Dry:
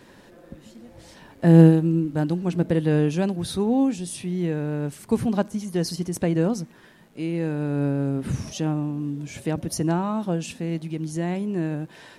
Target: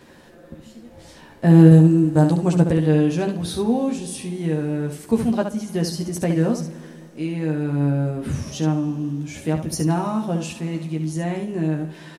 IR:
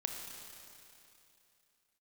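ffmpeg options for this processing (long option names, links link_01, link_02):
-filter_complex "[0:a]asettb=1/sr,asplit=3[link_01][link_02][link_03];[link_01]atrim=end=1.714[link_04];[link_02]atrim=start=1.71:end=2.71,asetpts=PTS-STARTPTS,afade=type=in:duration=0.004:curve=qsin,afade=type=out:start_time=0.996:duration=0.004:curve=qsin,equalizer=frequency=125:width_type=o:width=1:gain=8,equalizer=frequency=500:width_type=o:width=1:gain=5,equalizer=frequency=1000:width_type=o:width=1:gain=5,equalizer=frequency=8000:width_type=o:width=1:gain=12[link_05];[link_03]atrim=start=2.706[link_06];[link_04][link_05]acrossfade=duration=0.004:curve1=hsin:curve2=qsin[link_07];[link_07][link_06]acrossfade=duration=0.004:curve1=qsin:curve2=hsin,aecho=1:1:13|70:0.596|0.447,asplit=2[link_08][link_09];[1:a]atrim=start_sample=2205[link_10];[link_09][link_10]afir=irnorm=-1:irlink=0,volume=-10dB[link_11];[link_08][link_11]amix=inputs=2:normalize=0,volume=-2dB"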